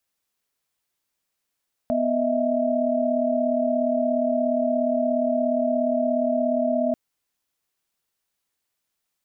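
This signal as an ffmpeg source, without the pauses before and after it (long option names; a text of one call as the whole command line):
ffmpeg -f lavfi -i "aevalsrc='0.0631*(sin(2*PI*246.94*t)+sin(2*PI*622.25*t)+sin(2*PI*659.26*t))':duration=5.04:sample_rate=44100" out.wav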